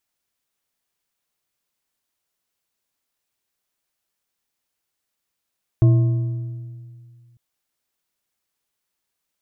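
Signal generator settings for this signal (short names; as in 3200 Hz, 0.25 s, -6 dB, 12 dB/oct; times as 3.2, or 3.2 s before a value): metal hit bar, lowest mode 120 Hz, modes 4, decay 2.19 s, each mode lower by 11 dB, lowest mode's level -9 dB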